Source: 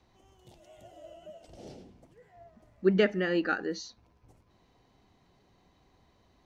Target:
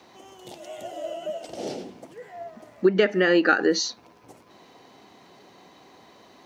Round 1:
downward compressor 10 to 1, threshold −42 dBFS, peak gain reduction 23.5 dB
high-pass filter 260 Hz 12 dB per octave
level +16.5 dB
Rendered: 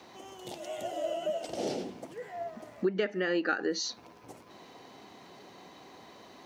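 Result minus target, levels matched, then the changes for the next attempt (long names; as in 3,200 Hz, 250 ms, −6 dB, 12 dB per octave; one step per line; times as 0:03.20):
downward compressor: peak gain reduction +10.5 dB
change: downward compressor 10 to 1, threshold −30.5 dBFS, peak gain reduction 13.5 dB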